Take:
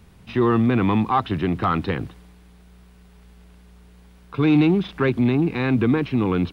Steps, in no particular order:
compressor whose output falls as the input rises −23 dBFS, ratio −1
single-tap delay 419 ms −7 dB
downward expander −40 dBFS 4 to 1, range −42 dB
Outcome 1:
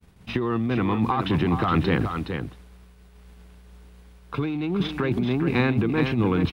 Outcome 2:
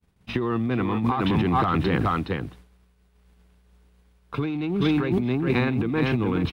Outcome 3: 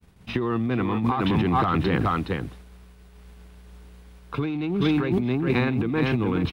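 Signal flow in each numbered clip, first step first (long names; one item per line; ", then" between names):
compressor whose output falls as the input rises, then downward expander, then single-tap delay
downward expander, then single-tap delay, then compressor whose output falls as the input rises
single-tap delay, then compressor whose output falls as the input rises, then downward expander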